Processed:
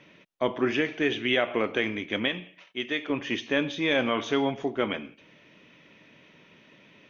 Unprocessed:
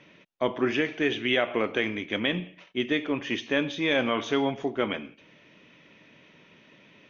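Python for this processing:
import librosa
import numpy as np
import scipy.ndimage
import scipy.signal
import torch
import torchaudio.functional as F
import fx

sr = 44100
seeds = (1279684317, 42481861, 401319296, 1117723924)

y = fx.low_shelf(x, sr, hz=440.0, db=-10.0, at=(2.28, 3.1))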